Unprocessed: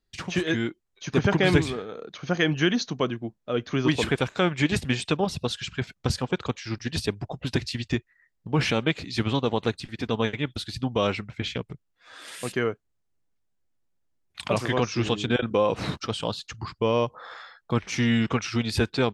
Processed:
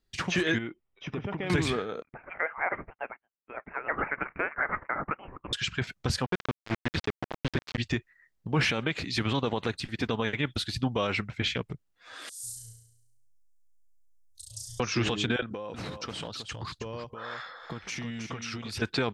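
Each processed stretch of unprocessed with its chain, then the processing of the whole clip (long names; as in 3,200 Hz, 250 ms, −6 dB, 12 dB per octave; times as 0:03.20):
0:00.58–0:01.50: notch filter 1,600 Hz, Q 7.1 + downward compressor, threshold −32 dBFS + Savitzky-Golay smoothing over 25 samples
0:02.02–0:05.53: inverse Chebyshev high-pass filter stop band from 340 Hz, stop band 80 dB + noise gate −53 dBFS, range −12 dB + voice inversion scrambler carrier 3,800 Hz
0:06.26–0:07.78: centre clipping without the shift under −26 dBFS + high-frequency loss of the air 170 metres
0:12.29–0:14.80: inverse Chebyshev band-stop filter 180–2,500 Hz, stop band 50 dB + flutter between parallel walls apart 5.9 metres, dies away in 0.82 s
0:15.42–0:18.82: downward compressor 16 to 1, threshold −34 dBFS + single-tap delay 319 ms −7 dB
whole clip: dynamic equaliser 1,700 Hz, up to +5 dB, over −42 dBFS, Q 0.94; brickwall limiter −17.5 dBFS; level +1 dB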